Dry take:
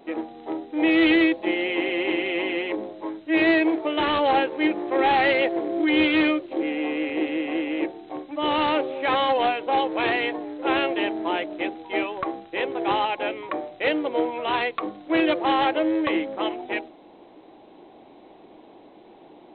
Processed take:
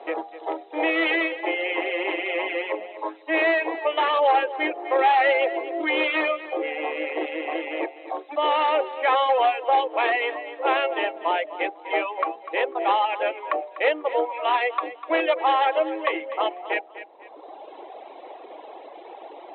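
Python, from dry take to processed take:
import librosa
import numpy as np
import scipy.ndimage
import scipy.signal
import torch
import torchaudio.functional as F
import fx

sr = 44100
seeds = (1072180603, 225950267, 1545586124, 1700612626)

y = scipy.signal.sosfilt(scipy.signal.butter(4, 480.0, 'highpass', fs=sr, output='sos'), x)
y = fx.dereverb_blind(y, sr, rt60_s=1.3)
y = scipy.signal.sosfilt(scipy.signal.butter(4, 3800.0, 'lowpass', fs=sr, output='sos'), y)
y = fx.high_shelf(y, sr, hz=2700.0, db=-11.0)
y = fx.notch(y, sr, hz=1500.0, q=13.0)
y = fx.echo_feedback(y, sr, ms=248, feedback_pct=22, wet_db=-16)
y = fx.band_squash(y, sr, depth_pct=40)
y = y * librosa.db_to_amplitude(6.0)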